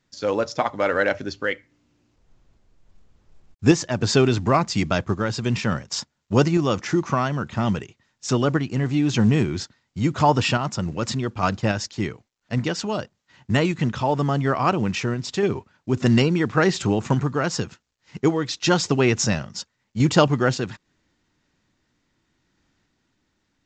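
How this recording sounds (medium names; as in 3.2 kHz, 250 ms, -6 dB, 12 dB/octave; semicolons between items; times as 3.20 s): random-step tremolo; µ-law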